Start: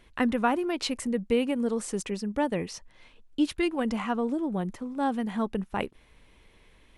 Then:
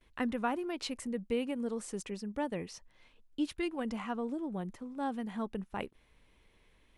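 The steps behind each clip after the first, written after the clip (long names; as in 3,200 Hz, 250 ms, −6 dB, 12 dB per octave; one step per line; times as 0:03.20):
noise gate with hold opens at −51 dBFS
level −8 dB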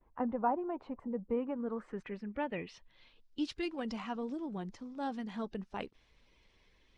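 spectral magnitudes quantised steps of 15 dB
low-pass filter sweep 890 Hz → 5,300 Hz, 0:01.18–0:03.36
level −2 dB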